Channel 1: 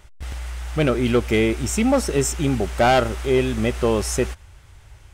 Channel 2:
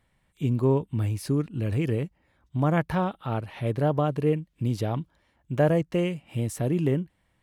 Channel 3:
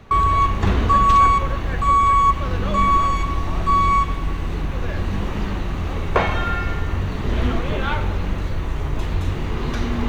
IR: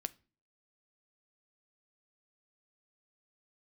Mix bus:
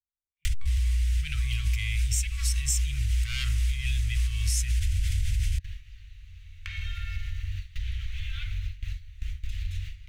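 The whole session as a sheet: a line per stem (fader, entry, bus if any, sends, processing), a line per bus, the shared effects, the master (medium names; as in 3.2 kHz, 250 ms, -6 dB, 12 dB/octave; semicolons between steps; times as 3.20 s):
-2.0 dB, 0.45 s, no bus, no send, bass shelf 280 Hz +7 dB; level flattener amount 100%
-12.0 dB, 0.00 s, bus A, no send, step-sequenced low-pass 3.1 Hz 380–7000 Hz
+0.5 dB, 0.50 s, bus A, no send, none
bus A: 0.0 dB, gate with hold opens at -12 dBFS; compression 16:1, threshold -24 dBFS, peak gain reduction 15 dB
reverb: none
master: inverse Chebyshev band-stop 240–830 Hz, stop band 60 dB; compression 3:1, threshold -26 dBFS, peak gain reduction 11.5 dB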